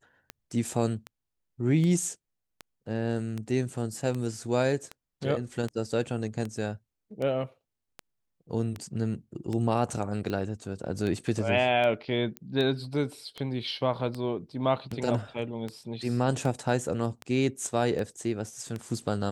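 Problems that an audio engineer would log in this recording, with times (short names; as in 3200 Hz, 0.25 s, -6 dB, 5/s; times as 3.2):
tick 78 rpm -21 dBFS
12.37 pop -21 dBFS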